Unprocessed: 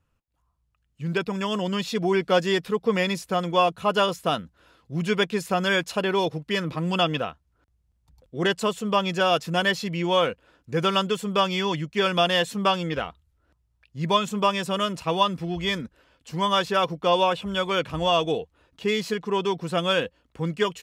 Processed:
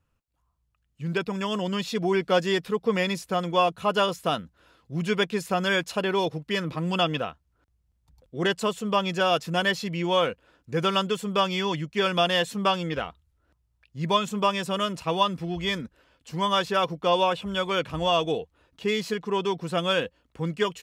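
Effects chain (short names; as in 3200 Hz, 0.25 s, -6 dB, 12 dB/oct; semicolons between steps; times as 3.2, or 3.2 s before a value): 3.56–4.35 mismatched tape noise reduction encoder only; gain -1.5 dB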